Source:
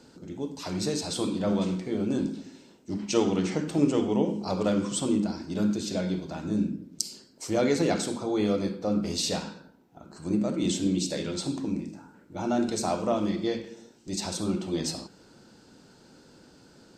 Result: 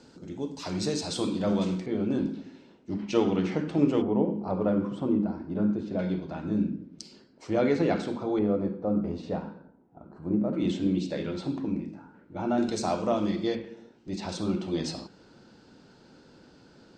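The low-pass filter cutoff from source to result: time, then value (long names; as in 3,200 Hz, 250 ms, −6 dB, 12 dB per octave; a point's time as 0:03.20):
7,600 Hz
from 0:01.86 3,200 Hz
from 0:04.02 1,300 Hz
from 0:05.99 2,700 Hz
from 0:08.39 1,100 Hz
from 0:10.53 2,600 Hz
from 0:12.58 6,000 Hz
from 0:13.55 2,800 Hz
from 0:14.29 4,700 Hz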